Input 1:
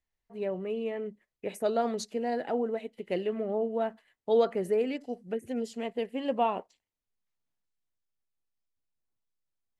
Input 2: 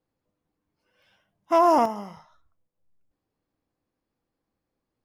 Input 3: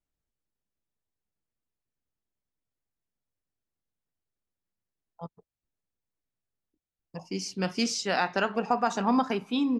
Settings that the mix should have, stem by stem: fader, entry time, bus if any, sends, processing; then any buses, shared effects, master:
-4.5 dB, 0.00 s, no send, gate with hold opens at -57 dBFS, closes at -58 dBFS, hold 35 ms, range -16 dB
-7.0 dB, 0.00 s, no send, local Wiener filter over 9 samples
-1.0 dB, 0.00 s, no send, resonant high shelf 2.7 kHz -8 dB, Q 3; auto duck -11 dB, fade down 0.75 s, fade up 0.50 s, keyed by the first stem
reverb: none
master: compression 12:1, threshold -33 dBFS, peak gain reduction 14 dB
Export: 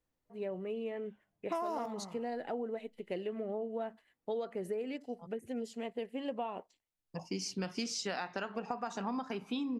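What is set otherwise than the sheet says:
stem 1: missing gate with hold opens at -57 dBFS, closes at -58 dBFS, hold 35 ms, range -16 dB; stem 3: missing resonant high shelf 2.7 kHz -8 dB, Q 3

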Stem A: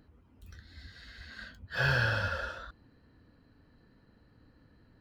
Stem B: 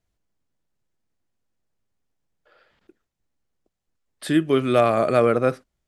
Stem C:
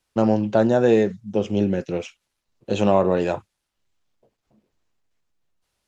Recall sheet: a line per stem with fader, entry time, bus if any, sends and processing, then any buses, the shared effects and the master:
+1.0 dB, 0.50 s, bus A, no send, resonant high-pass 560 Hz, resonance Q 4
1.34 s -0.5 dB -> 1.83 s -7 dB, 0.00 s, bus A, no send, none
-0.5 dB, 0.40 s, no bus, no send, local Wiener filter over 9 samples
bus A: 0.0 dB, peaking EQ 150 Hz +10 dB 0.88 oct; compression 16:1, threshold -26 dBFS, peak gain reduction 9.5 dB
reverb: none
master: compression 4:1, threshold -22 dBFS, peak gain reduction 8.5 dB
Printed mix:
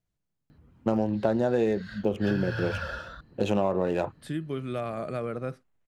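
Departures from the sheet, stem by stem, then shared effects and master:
stem A: missing resonant high-pass 560 Hz, resonance Q 4; stem B -0.5 dB -> -7.5 dB; stem C: entry 0.40 s -> 0.70 s

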